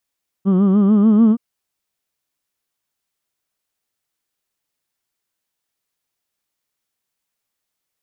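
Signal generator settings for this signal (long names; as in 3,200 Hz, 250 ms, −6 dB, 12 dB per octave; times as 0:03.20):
vowel from formants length 0.92 s, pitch 186 Hz, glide +3.5 semitones, vibrato 6.8 Hz, F1 270 Hz, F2 1,200 Hz, F3 3,100 Hz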